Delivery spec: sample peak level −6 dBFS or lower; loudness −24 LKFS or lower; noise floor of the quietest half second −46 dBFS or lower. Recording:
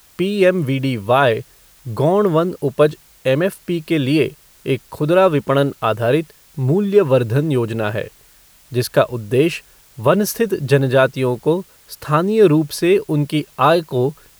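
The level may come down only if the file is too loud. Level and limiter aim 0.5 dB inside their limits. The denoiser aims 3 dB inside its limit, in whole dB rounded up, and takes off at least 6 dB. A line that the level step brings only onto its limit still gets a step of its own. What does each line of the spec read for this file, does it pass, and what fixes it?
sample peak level −2.0 dBFS: out of spec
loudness −17.5 LKFS: out of spec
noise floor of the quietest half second −49 dBFS: in spec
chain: level −7 dB

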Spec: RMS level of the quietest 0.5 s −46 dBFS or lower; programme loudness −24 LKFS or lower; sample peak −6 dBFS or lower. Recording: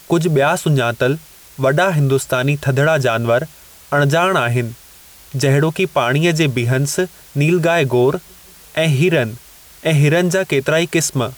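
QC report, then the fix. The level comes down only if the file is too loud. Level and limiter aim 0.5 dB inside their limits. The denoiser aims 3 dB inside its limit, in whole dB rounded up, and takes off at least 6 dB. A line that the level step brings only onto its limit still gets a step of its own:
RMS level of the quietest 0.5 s −43 dBFS: out of spec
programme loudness −16.0 LKFS: out of spec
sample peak −5.5 dBFS: out of spec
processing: level −8.5 dB

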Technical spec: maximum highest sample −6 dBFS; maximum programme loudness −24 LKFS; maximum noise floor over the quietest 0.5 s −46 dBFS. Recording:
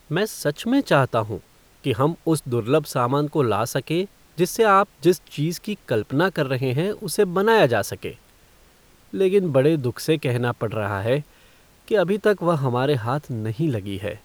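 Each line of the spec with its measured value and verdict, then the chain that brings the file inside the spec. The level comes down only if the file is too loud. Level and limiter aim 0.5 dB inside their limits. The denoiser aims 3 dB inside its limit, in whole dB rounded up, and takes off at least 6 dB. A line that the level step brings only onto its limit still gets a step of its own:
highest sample −5.5 dBFS: out of spec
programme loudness −22.0 LKFS: out of spec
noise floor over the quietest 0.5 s −54 dBFS: in spec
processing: level −2.5 dB

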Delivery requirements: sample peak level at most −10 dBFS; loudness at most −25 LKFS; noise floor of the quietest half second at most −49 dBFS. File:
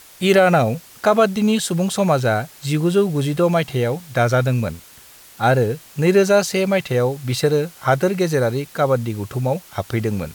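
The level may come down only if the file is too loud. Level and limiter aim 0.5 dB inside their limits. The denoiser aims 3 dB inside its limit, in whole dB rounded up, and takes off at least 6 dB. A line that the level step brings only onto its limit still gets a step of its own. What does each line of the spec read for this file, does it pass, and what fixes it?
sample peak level −4.0 dBFS: out of spec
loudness −19.0 LKFS: out of spec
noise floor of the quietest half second −45 dBFS: out of spec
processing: level −6.5 dB

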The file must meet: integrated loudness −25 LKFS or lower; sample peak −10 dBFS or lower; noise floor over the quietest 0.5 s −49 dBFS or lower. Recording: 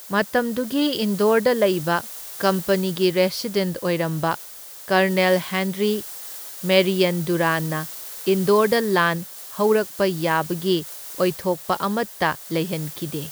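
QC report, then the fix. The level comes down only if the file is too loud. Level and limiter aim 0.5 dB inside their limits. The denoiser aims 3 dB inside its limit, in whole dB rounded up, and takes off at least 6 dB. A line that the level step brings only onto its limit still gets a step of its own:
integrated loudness −21.5 LKFS: out of spec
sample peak −5.5 dBFS: out of spec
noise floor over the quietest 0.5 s −39 dBFS: out of spec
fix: broadband denoise 9 dB, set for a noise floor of −39 dBFS
level −4 dB
brickwall limiter −10.5 dBFS

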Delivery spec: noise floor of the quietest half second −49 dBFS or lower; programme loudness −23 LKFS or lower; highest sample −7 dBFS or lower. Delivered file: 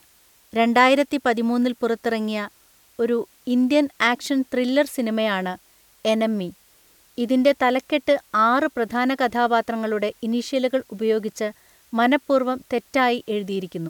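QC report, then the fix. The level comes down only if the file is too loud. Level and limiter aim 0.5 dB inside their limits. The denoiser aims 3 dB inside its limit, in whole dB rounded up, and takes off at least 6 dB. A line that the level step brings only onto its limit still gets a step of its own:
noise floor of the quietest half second −56 dBFS: in spec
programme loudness −22.0 LKFS: out of spec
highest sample −3.5 dBFS: out of spec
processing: level −1.5 dB
brickwall limiter −7.5 dBFS

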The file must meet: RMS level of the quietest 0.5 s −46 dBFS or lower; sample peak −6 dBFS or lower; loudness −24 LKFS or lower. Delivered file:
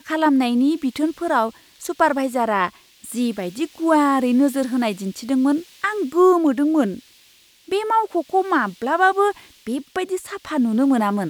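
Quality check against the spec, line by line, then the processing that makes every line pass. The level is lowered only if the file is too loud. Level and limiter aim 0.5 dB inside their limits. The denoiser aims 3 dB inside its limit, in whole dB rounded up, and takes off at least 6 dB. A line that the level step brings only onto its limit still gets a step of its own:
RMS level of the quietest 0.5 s −53 dBFS: in spec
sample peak −3.5 dBFS: out of spec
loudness −20.0 LKFS: out of spec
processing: level −4.5 dB

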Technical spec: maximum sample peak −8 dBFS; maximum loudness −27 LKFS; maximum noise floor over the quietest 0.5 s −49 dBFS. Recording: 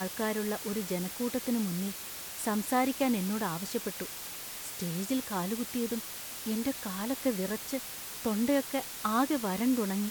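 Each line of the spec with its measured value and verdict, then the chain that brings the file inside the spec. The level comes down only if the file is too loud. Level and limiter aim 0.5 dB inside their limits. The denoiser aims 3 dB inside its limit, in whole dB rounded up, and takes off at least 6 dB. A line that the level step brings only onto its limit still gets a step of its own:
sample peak −15.5 dBFS: in spec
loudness −32.5 LKFS: in spec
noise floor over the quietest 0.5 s −42 dBFS: out of spec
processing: broadband denoise 10 dB, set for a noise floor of −42 dBFS

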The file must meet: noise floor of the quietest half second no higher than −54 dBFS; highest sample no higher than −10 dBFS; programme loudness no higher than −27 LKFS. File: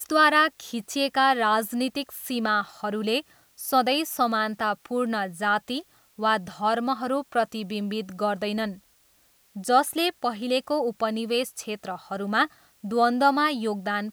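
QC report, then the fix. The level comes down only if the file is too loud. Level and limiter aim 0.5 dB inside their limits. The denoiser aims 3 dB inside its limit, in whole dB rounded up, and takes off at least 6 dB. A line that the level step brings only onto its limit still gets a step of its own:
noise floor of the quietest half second −62 dBFS: in spec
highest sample −7.0 dBFS: out of spec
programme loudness −25.5 LKFS: out of spec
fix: level −2 dB
brickwall limiter −10.5 dBFS

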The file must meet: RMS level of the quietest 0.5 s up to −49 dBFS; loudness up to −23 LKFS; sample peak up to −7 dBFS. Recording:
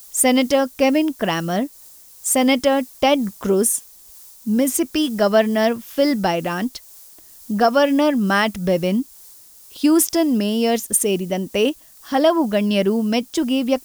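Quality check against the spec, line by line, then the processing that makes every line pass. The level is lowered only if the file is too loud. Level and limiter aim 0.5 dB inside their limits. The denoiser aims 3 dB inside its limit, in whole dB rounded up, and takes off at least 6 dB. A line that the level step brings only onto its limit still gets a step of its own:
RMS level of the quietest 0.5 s −45 dBFS: out of spec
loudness −19.0 LKFS: out of spec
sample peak −5.5 dBFS: out of spec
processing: level −4.5 dB

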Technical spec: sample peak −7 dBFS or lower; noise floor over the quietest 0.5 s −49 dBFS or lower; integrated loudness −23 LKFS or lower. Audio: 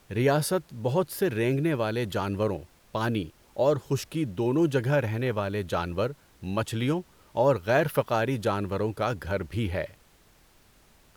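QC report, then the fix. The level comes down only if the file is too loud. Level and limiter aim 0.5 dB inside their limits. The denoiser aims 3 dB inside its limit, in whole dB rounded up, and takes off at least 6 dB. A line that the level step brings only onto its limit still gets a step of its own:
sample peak −9.5 dBFS: in spec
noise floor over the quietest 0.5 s −59 dBFS: in spec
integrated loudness −28.0 LKFS: in spec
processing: no processing needed

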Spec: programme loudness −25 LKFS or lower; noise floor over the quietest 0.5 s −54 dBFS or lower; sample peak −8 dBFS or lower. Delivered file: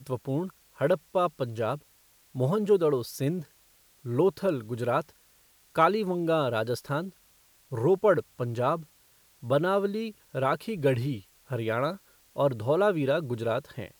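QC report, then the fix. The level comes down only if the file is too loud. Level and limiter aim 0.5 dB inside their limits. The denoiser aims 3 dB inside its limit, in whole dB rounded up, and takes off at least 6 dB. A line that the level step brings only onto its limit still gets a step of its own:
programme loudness −28.0 LKFS: in spec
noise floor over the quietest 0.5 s −62 dBFS: in spec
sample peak −9.0 dBFS: in spec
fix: no processing needed

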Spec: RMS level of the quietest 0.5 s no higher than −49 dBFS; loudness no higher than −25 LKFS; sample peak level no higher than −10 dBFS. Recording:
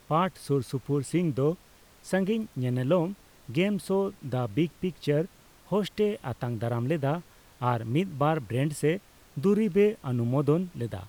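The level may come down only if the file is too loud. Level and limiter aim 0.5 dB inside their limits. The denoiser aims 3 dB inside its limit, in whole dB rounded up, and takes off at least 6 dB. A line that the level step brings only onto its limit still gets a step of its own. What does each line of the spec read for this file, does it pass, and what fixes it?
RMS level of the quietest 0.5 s −56 dBFS: in spec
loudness −28.5 LKFS: in spec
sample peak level −13.0 dBFS: in spec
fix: no processing needed

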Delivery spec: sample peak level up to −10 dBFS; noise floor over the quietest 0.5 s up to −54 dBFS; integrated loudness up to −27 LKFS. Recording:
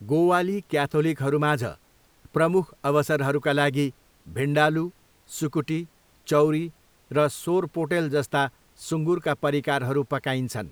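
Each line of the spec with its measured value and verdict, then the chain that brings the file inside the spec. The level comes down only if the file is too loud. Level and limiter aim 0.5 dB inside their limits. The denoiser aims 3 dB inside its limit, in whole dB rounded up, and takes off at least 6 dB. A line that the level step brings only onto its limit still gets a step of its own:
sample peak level −6.0 dBFS: out of spec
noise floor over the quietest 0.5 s −59 dBFS: in spec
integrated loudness −24.5 LKFS: out of spec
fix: level −3 dB
brickwall limiter −10.5 dBFS

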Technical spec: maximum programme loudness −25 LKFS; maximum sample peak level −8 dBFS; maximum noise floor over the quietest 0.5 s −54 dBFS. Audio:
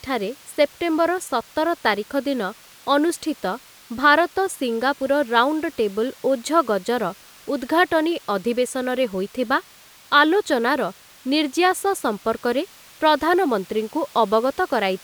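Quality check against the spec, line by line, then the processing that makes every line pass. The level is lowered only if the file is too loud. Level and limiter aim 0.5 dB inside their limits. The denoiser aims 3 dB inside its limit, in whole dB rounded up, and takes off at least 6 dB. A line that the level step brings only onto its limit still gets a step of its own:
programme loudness −21.5 LKFS: out of spec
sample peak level −4.5 dBFS: out of spec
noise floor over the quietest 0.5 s −48 dBFS: out of spec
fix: broadband denoise 6 dB, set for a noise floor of −48 dBFS
level −4 dB

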